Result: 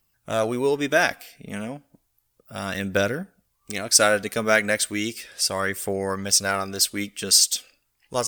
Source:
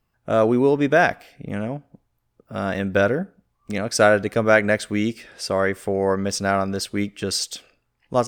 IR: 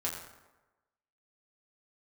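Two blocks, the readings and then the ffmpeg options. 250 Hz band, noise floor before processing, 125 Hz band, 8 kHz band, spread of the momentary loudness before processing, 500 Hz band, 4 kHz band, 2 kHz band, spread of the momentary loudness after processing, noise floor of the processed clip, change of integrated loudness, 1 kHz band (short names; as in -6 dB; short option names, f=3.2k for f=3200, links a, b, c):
-6.5 dB, -72 dBFS, -6.5 dB, +10.0 dB, 14 LU, -5.0 dB, +7.0 dB, -1.0 dB, 17 LU, -72 dBFS, -0.5 dB, -4.0 dB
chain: -af "aphaser=in_gain=1:out_gain=1:delay=4.8:decay=0.33:speed=0.34:type=triangular,crystalizer=i=6.5:c=0,volume=-7dB"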